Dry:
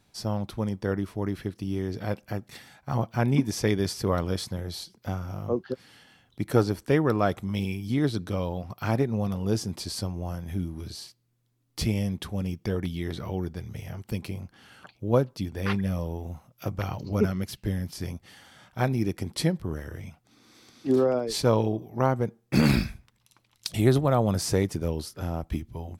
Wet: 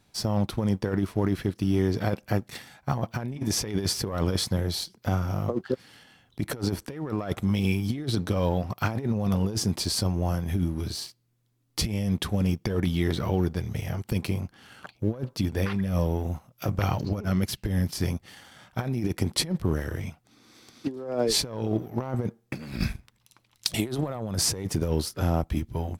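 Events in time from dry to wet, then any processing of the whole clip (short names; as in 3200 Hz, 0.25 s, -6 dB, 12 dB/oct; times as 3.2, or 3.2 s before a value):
23.74–24.15 HPF 380 Hz -> 130 Hz 6 dB/oct
whole clip: sample leveller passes 1; negative-ratio compressor -25 dBFS, ratio -0.5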